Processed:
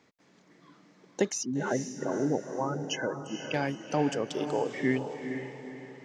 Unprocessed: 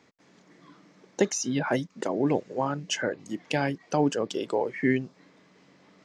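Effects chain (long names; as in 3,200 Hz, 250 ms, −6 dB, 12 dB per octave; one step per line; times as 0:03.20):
0:01.43–0:03.54: gate on every frequency bin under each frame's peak −15 dB strong
feedback delay with all-pass diffusion 469 ms, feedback 43%, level −7.5 dB
level −3.5 dB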